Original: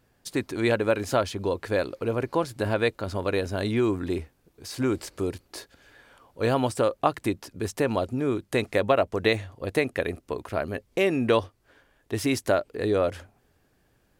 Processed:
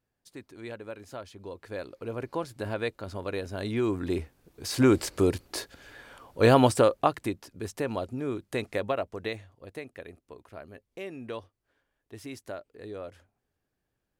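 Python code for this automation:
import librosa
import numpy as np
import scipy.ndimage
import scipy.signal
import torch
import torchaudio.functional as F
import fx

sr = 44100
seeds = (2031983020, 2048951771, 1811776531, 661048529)

y = fx.gain(x, sr, db=fx.line((1.18, -17.0), (2.25, -7.0), (3.48, -7.0), (4.75, 5.0), (6.67, 5.0), (7.39, -6.0), (8.73, -6.0), (9.81, -16.0)))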